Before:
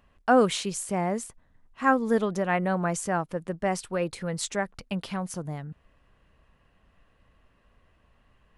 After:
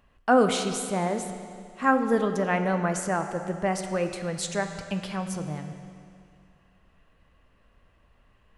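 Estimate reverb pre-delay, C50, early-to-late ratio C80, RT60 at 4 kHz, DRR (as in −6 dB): 11 ms, 7.5 dB, 8.0 dB, 2.2 s, 6.0 dB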